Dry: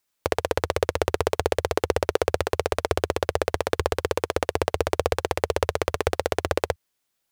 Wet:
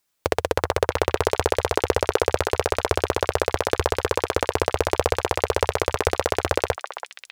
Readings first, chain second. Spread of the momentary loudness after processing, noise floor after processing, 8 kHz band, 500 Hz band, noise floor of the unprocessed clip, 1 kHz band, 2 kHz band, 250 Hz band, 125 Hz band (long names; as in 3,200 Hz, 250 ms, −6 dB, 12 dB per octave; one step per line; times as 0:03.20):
2 LU, −62 dBFS, +2.5 dB, +2.0 dB, −77 dBFS, +3.0 dB, +2.5 dB, +2.0 dB, +2.0 dB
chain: log-companded quantiser 8 bits
echo through a band-pass that steps 331 ms, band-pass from 1,100 Hz, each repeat 1.4 octaves, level −4 dB
level +2 dB